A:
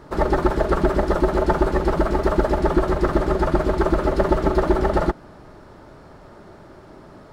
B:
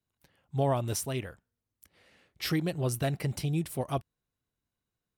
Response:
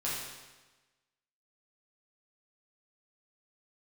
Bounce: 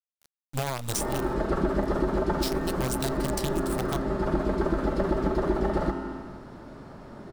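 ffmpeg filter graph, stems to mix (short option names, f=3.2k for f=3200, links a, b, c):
-filter_complex "[0:a]equalizer=f=220:w=1.7:g=7.5,adelay=800,volume=-5.5dB,asplit=2[a][b];[b]volume=-6.5dB[c];[1:a]equalizer=f=125:t=o:w=1:g=6,equalizer=f=250:t=o:w=1:g=-9,equalizer=f=1k:t=o:w=1:g=7,equalizer=f=2k:t=o:w=1:g=-8,equalizer=f=4k:t=o:w=1:g=8,equalizer=f=8k:t=o:w=1:g=11,acompressor=threshold=-25dB:ratio=10,acrusher=bits=5:dc=4:mix=0:aa=0.000001,volume=2dB,asplit=2[d][e];[e]apad=whole_len=358228[f];[a][f]sidechaincompress=threshold=-44dB:ratio=8:attack=16:release=235[g];[2:a]atrim=start_sample=2205[h];[c][h]afir=irnorm=-1:irlink=0[i];[g][d][i]amix=inputs=3:normalize=0,acompressor=threshold=-27dB:ratio=2"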